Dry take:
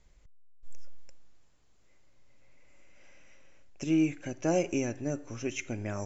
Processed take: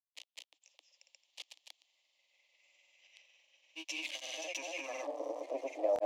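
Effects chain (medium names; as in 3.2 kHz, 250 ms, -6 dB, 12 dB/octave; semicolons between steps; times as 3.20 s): jump at every zero crossing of -33 dBFS; steep high-pass 300 Hz 96 dB/octave; peak limiter -23 dBFS, peak gain reduction 7 dB; static phaser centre 390 Hz, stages 6; band-pass sweep 3.1 kHz -> 550 Hz, 4.53–5.17 s; granulator, spray 205 ms, pitch spread up and down by 0 st; trim +11 dB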